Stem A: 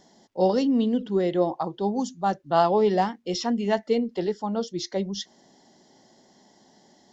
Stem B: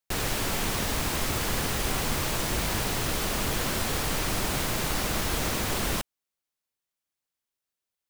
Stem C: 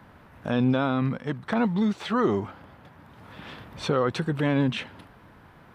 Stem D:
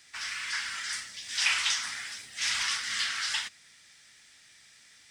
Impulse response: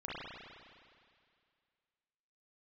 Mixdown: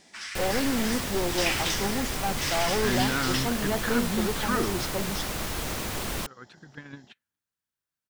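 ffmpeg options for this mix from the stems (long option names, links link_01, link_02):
-filter_complex "[0:a]aeval=exprs='(tanh(14.1*val(0)+0.5)-tanh(0.5))/14.1':channel_layout=same,volume=-1dB,asplit=2[link_01][link_02];[1:a]adelay=250,volume=-3.5dB[link_03];[2:a]equalizer=frequency=630:width_type=o:width=0.67:gain=-11,equalizer=frequency=1600:width_type=o:width=0.67:gain=10,equalizer=frequency=4000:width_type=o:width=0.67:gain=5,adelay=2350,volume=-5.5dB[link_04];[3:a]volume=-2dB[link_05];[link_02]apad=whole_len=357012[link_06];[link_04][link_06]sidechaingate=range=-44dB:threshold=-57dB:ratio=16:detection=peak[link_07];[link_01][link_03][link_07][link_05]amix=inputs=4:normalize=0"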